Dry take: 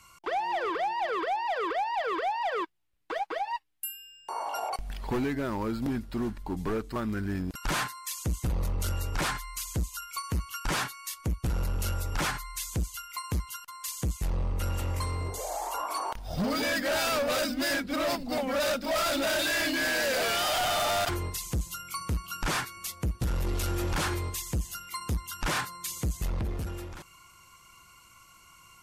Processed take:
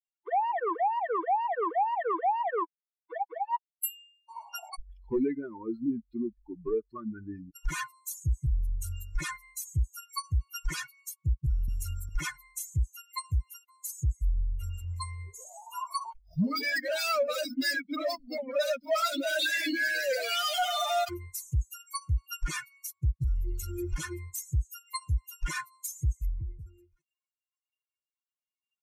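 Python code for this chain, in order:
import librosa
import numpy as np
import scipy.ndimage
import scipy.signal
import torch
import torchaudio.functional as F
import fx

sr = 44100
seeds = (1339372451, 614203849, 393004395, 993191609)

y = fx.bin_expand(x, sr, power=3.0)
y = fx.band_squash(y, sr, depth_pct=70, at=(11.68, 12.09))
y = y * librosa.db_to_amplitude(6.5)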